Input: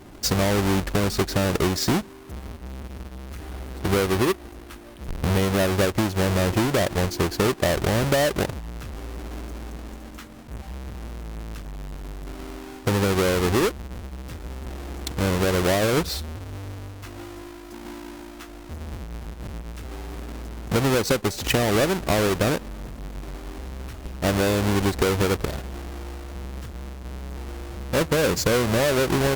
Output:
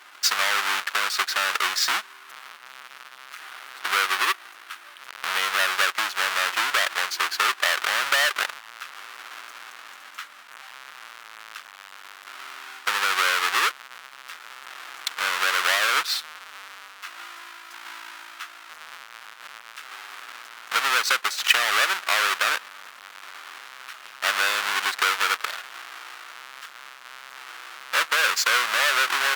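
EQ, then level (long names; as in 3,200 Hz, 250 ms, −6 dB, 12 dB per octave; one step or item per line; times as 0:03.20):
high-pass with resonance 1,300 Hz, resonance Q 2.2
parametric band 3,100 Hz +6 dB 1.6 octaves
0.0 dB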